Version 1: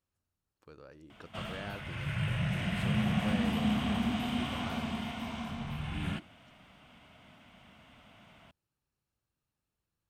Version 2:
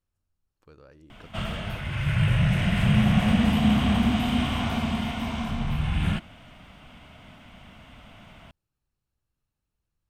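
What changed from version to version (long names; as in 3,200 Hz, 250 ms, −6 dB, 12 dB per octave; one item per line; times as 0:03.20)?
background +7.5 dB
master: remove high-pass filter 130 Hz 6 dB per octave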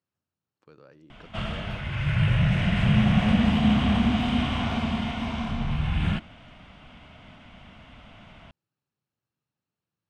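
speech: add high-pass filter 120 Hz 24 dB per octave
master: add low-pass filter 5,700 Hz 12 dB per octave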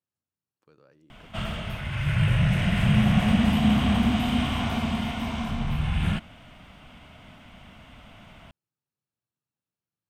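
speech −6.0 dB
master: remove low-pass filter 5,700 Hz 12 dB per octave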